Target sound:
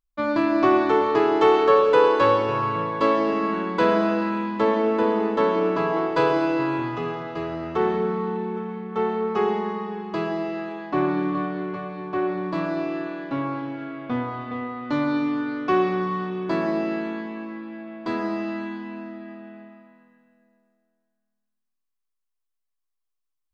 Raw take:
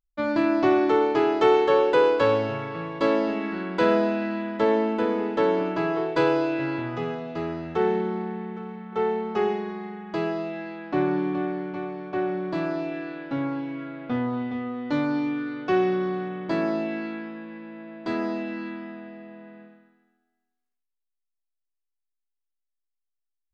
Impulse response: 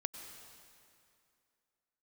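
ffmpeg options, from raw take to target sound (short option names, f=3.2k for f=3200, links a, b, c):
-filter_complex "[0:a]equalizer=f=1.1k:t=o:w=0.23:g=9[a];[1:a]atrim=start_sample=2205[b];[a][b]afir=irnorm=-1:irlink=0,volume=2dB"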